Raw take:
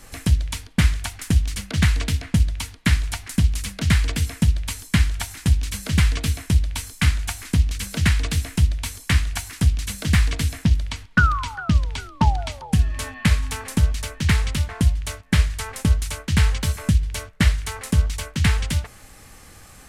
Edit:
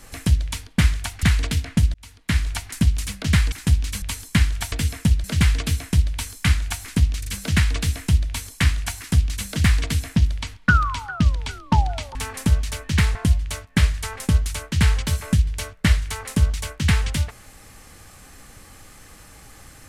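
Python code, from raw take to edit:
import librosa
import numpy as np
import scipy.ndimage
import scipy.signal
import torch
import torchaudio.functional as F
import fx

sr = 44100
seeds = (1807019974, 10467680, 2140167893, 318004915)

y = fx.edit(x, sr, fx.cut(start_s=1.23, length_s=0.57),
    fx.fade_in_span(start_s=2.51, length_s=0.54),
    fx.swap(start_s=4.09, length_s=0.52, other_s=5.31, other_length_s=0.5),
    fx.stutter(start_s=7.76, slice_s=0.04, count=3),
    fx.cut(start_s=12.64, length_s=0.82),
    fx.cut(start_s=14.46, length_s=0.25), tone=tone)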